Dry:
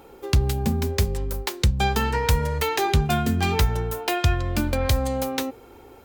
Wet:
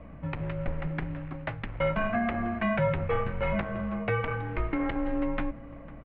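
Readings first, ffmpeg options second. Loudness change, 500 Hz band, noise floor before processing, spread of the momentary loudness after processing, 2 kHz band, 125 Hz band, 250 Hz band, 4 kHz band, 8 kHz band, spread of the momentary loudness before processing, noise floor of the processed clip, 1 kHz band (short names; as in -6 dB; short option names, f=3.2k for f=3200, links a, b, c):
-7.0 dB, -4.0 dB, -47 dBFS, 10 LU, -4.0 dB, -10.0 dB, -3.0 dB, -18.5 dB, under -40 dB, 5 LU, -45 dBFS, -7.0 dB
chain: -filter_complex "[0:a]highpass=57,acrusher=bits=4:mode=log:mix=0:aa=0.000001,flanger=delay=1.4:depth=3.8:regen=-70:speed=0.86:shape=sinusoidal,asoftclip=type=tanh:threshold=-22.5dB,acrusher=bits=9:mix=0:aa=0.000001,aeval=exprs='val(0)+0.00891*(sin(2*PI*60*n/s)+sin(2*PI*2*60*n/s)/2+sin(2*PI*3*60*n/s)/3+sin(2*PI*4*60*n/s)/4+sin(2*PI*5*60*n/s)/5)':c=same,asplit=2[a][b];[b]adelay=501.5,volume=-19dB,highshelf=f=4k:g=-11.3[c];[a][c]amix=inputs=2:normalize=0,highpass=f=180:t=q:w=0.5412,highpass=f=180:t=q:w=1.307,lowpass=f=2.6k:t=q:w=0.5176,lowpass=f=2.6k:t=q:w=0.7071,lowpass=f=2.6k:t=q:w=1.932,afreqshift=-240,volume=4dB"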